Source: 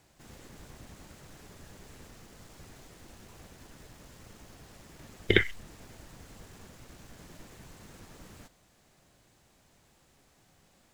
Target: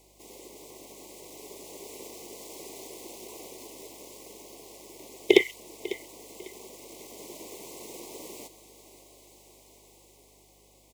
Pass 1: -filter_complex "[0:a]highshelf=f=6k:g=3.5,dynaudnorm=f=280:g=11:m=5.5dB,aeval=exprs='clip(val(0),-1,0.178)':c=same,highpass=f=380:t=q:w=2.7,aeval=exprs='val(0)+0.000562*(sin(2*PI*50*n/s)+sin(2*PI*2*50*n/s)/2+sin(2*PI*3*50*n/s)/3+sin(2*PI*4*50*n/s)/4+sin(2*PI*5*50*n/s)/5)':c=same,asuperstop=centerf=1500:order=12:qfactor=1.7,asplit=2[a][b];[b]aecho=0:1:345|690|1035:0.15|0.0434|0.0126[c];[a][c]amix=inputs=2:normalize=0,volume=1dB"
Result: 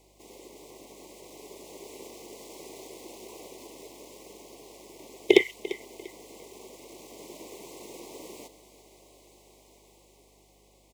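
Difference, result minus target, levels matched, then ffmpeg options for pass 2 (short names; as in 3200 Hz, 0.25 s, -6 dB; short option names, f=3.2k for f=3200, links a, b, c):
echo 0.203 s early; 8000 Hz band -5.5 dB
-filter_complex "[0:a]highshelf=f=6k:g=10,dynaudnorm=f=280:g=11:m=5.5dB,aeval=exprs='clip(val(0),-1,0.178)':c=same,highpass=f=380:t=q:w=2.7,aeval=exprs='val(0)+0.000562*(sin(2*PI*50*n/s)+sin(2*PI*2*50*n/s)/2+sin(2*PI*3*50*n/s)/3+sin(2*PI*4*50*n/s)/4+sin(2*PI*5*50*n/s)/5)':c=same,asuperstop=centerf=1500:order=12:qfactor=1.7,asplit=2[a][b];[b]aecho=0:1:548|1096|1644:0.15|0.0434|0.0126[c];[a][c]amix=inputs=2:normalize=0,volume=1dB"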